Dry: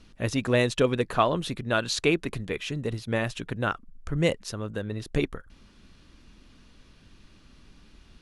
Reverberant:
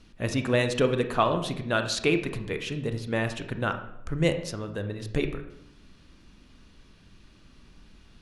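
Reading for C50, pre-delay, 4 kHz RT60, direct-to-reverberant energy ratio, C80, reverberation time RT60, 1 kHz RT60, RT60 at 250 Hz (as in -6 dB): 9.5 dB, 26 ms, 0.55 s, 7.5 dB, 12.5 dB, 0.80 s, 0.75 s, 0.90 s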